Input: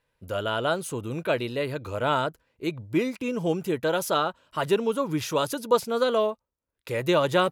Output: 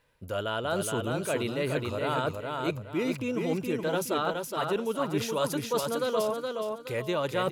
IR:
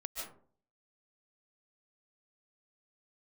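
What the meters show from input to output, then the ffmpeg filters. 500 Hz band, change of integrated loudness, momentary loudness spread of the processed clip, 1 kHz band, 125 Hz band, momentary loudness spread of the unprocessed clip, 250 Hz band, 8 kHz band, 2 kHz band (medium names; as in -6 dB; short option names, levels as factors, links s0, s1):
-3.5 dB, -3.5 dB, 4 LU, -4.0 dB, -2.0 dB, 9 LU, -2.5 dB, 0.0 dB, -3.5 dB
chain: -af "areverse,acompressor=threshold=0.0178:ratio=4,areverse,aecho=1:1:419|838|1257|1676:0.631|0.189|0.0568|0.017,volume=2"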